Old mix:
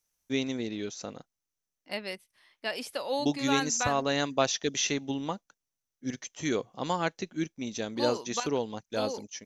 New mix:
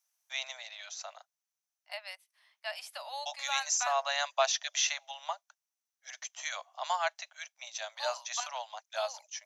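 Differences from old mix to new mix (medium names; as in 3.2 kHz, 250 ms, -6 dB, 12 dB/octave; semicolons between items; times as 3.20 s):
second voice -4.5 dB; master: add steep high-pass 610 Hz 96 dB/octave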